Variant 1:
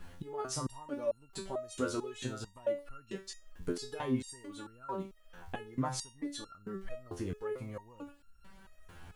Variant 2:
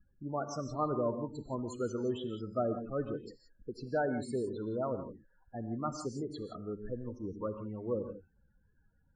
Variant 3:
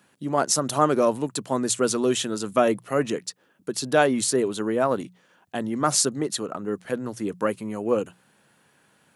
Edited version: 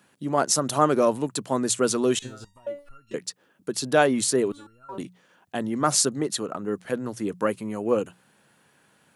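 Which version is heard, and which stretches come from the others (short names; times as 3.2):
3
2.19–3.14 from 1
4.52–4.98 from 1
not used: 2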